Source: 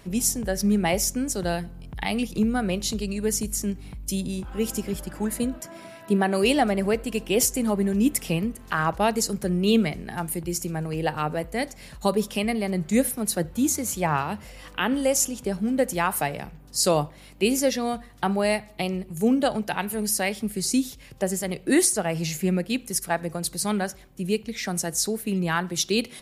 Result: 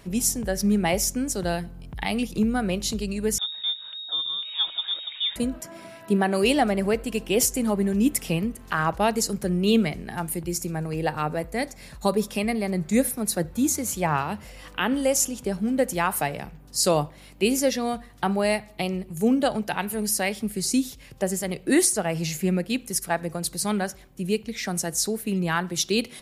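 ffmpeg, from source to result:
-filter_complex "[0:a]asettb=1/sr,asplit=3[s0][s1][s2];[s0]atrim=end=3.384[s3];[s1]atrim=start=3.38:end=5.36,asetpts=PTS-STARTPTS,afade=t=in:d=0.004:c=qsin,afade=t=out:st=1.976:d=0.004:c=qsin,lowpass=f=3200:t=q:w=0.5098,lowpass=f=3200:t=q:w=0.6013,lowpass=f=3200:t=q:w=0.9,lowpass=f=3200:t=q:w=2.563,afreqshift=-3800[s4];[s2]atrim=start=5.356[s5];[s3][s4]acrossfade=d=0.004:c1=hsin:c2=qsin[s6];[s6][s5]acrossfade=d=0.004:c1=qsin:c2=hsin,asettb=1/sr,asplit=3[s7][s8][s9];[s7]atrim=end=10.504[s10];[s8]atrim=start=10.5:end=13.73,asetpts=PTS-STARTPTS,afade=t=in:d=0.004:c=qsin,afade=t=out:st=3.226:d=0.004:c=qsin,bandreject=f=3000:w=11[s11];[s9]atrim=start=13.726[s12];[s10][s11]acrossfade=d=0.004:c1=hsin:c2=qsin[s13];[s13][s12]acrossfade=d=0.004:c1=qsin:c2=hsin"

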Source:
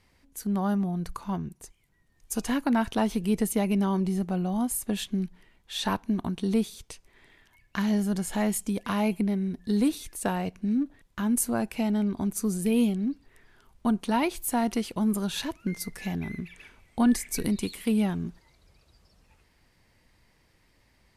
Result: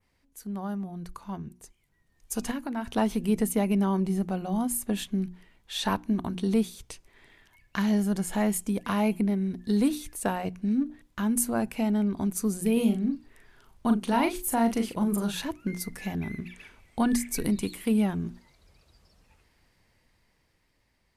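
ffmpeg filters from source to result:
-filter_complex "[0:a]asettb=1/sr,asplit=3[s0][s1][s2];[s0]atrim=end=2.514[s3];[s1]atrim=start=2.51:end=2.96,asetpts=PTS-STARTPTS,afade=t=in:d=0.004:c=qsin,afade=t=out:st=0.446:d=0.004:c=qsin,acompressor=threshold=0.02:ratio=2:attack=3.2:release=140:knee=1:detection=peak[s4];[s2]atrim=start=2.956[s5];[s3][s4]acrossfade=d=0.004:c1=hsin:c2=qsin[s6];[s6][s5]acrossfade=d=0.004:c1=qsin:c2=hsin,asettb=1/sr,asplit=3[s7][s8][s9];[s7]atrim=end=12.734[s10];[s8]atrim=start=12.73:end=15.35,asetpts=PTS-STARTPTS,afade=t=in:d=0.004:c=qsin,afade=t=out:st=2.616:d=0.004:c=qsin,asplit=2[s11][s12];[s12]adelay=39,volume=0.473[s13];[s11][s13]amix=inputs=2:normalize=0,atrim=end_sample=115542[s14];[s9]atrim=start=15.346[s15];[s10][s14]acrossfade=d=0.004:c1=hsin:c2=qsin[s16];[s16][s15]acrossfade=d=0.004:c1=qsin:c2=hsin,bandreject=f=60:t=h:w=6,bandreject=f=120:t=h:w=6,bandreject=f=180:t=h:w=6,bandreject=f=240:t=h:w=6,bandreject=f=300:t=h:w=6,bandreject=f=360:t=h:w=6,adynamicequalizer=threshold=0.00316:dfrequency=4400:dqfactor=0.88:tfrequency=4400:tqfactor=0.88:attack=5:release=100:ratio=0.375:range=2.5:mode=cutabove:tftype=bell,dynaudnorm=f=530:g=7:m=2.51,volume=0.447"

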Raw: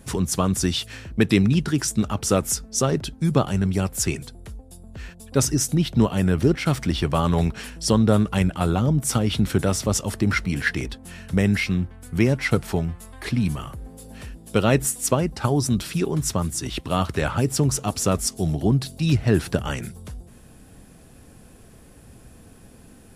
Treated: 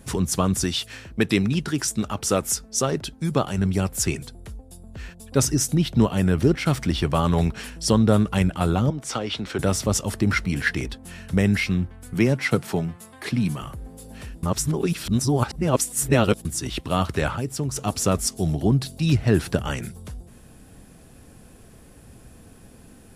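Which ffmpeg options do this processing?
-filter_complex "[0:a]asettb=1/sr,asplit=3[s0][s1][s2];[s0]atrim=end=0.644[s3];[s1]atrim=start=0.64:end=3.58,asetpts=PTS-STARTPTS,afade=t=in:d=0.004:c=qsin,afade=t=out:st=2.936:d=0.004:c=qsin,lowshelf=f=250:g=-6[s4];[s2]atrim=start=3.576[s5];[s3][s4]acrossfade=d=0.004:c1=hsin:c2=qsin[s6];[s6][s5]acrossfade=d=0.004:c1=qsin:c2=hsin,asettb=1/sr,asplit=3[s7][s8][s9];[s7]atrim=end=8.904[s10];[s8]atrim=start=8.9:end=9.59,asetpts=PTS-STARTPTS,afade=t=in:d=0.004:c=qsin,afade=t=out:st=0.686:d=0.004:c=qsin,acrossover=split=330 6700:gain=0.2 1 0.112[s11][s12][s13];[s11][s12][s13]amix=inputs=3:normalize=0[s14];[s9]atrim=start=9.586[s15];[s10][s14]acrossfade=d=0.004:c1=hsin:c2=qsin[s16];[s16][s15]acrossfade=d=0.004:c1=qsin:c2=hsin,asettb=1/sr,asplit=3[s17][s18][s19];[s17]atrim=end=12.144[s20];[s18]atrim=start=12.14:end=13.62,asetpts=PTS-STARTPTS,afade=t=in:d=0.004:c=qsin,afade=t=out:st=1.476:d=0.004:c=qsin,highpass=f=110:w=0.5412,highpass=f=110:w=1.3066[s21];[s19]atrim=start=13.616[s22];[s20][s21]acrossfade=d=0.004:c1=hsin:c2=qsin[s23];[s23][s22]acrossfade=d=0.004:c1=qsin:c2=hsin,asplit=5[s24][s25][s26][s27][s28];[s24]atrim=end=14.432[s29];[s25]atrim=start=14.428:end=16.452,asetpts=PTS-STARTPTS,areverse[s30];[s26]atrim=start=16.448:end=17.362[s31];[s27]atrim=start=17.358:end=17.762,asetpts=PTS-STARTPTS,volume=0.473[s32];[s28]atrim=start=17.758[s33];[s29][s30]acrossfade=d=0.004:c1=hsin:c2=hsin[s34];[s34][s31]acrossfade=d=0.004:c1=hsin:c2=hsin[s35];[s35][s32]acrossfade=d=0.004:c1=hsin:c2=hsin[s36];[s36][s33]acrossfade=d=0.004:c1=hsin:c2=hsin"

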